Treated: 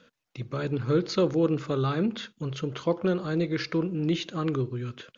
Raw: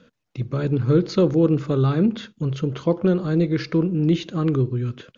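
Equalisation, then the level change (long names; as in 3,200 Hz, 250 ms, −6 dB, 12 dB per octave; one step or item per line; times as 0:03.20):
low-shelf EQ 450 Hz −10 dB
0.0 dB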